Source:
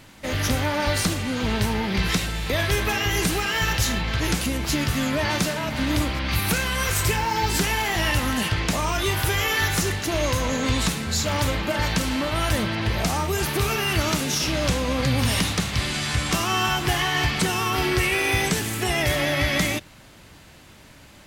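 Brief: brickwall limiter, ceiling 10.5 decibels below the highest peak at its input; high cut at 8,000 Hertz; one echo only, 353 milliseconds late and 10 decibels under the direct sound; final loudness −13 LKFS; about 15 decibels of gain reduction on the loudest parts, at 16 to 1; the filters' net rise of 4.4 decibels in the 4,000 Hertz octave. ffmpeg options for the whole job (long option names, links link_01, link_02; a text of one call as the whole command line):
ffmpeg -i in.wav -af "lowpass=8000,equalizer=frequency=4000:width_type=o:gain=6,acompressor=threshold=-32dB:ratio=16,alimiter=level_in=7.5dB:limit=-24dB:level=0:latency=1,volume=-7.5dB,aecho=1:1:353:0.316,volume=26dB" out.wav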